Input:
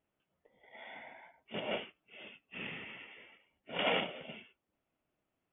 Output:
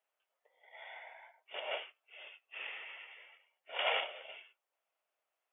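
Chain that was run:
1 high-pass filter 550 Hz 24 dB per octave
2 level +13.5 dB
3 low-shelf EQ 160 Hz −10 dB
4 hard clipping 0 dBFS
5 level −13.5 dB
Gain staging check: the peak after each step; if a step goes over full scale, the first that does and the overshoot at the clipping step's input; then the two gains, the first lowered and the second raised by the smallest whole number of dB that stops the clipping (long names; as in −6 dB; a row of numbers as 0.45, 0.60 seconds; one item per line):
−19.5, −6.0, −6.0, −6.0, −19.5 dBFS
no step passes full scale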